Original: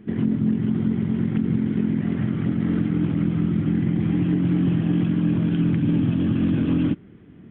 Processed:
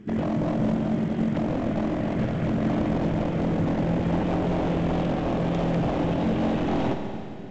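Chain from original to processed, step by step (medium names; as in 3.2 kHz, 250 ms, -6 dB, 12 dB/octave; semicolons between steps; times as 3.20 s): 0.72–1.36 s: peaking EQ 63 Hz -7.5 dB 2.3 oct; wavefolder -20.5 dBFS; Schroeder reverb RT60 2.8 s, combs from 28 ms, DRR 4.5 dB; µ-law 128 kbps 16 kHz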